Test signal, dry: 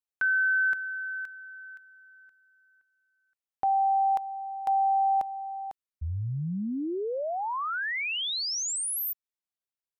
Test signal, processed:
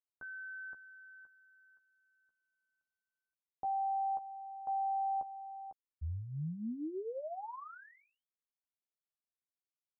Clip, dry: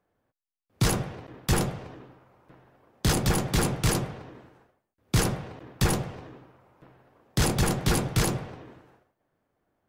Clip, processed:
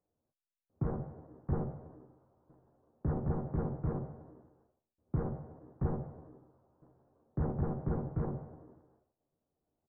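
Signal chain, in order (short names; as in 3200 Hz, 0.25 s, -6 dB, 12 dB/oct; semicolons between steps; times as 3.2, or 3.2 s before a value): Gaussian blur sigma 8.5 samples; doubler 13 ms -6.5 dB; gain -9 dB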